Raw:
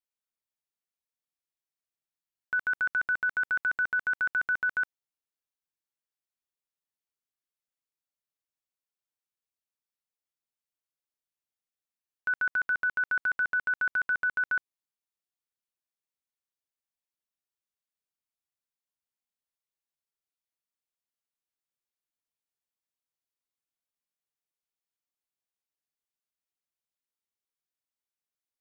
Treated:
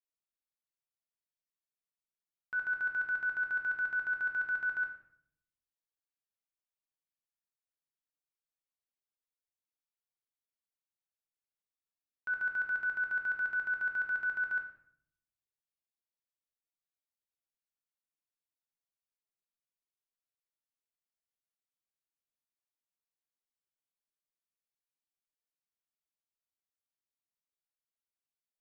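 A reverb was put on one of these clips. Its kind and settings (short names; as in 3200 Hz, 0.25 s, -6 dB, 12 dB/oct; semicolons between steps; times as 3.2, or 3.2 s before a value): shoebox room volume 130 m³, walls mixed, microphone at 0.68 m; gain -10.5 dB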